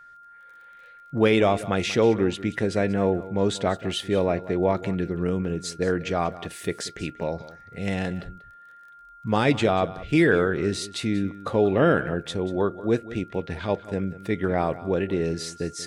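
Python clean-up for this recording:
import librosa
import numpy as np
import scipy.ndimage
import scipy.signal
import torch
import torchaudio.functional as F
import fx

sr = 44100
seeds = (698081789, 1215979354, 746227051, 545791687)

y = fx.fix_declick_ar(x, sr, threshold=6.5)
y = fx.notch(y, sr, hz=1400.0, q=30.0)
y = fx.fix_echo_inverse(y, sr, delay_ms=187, level_db=-16.5)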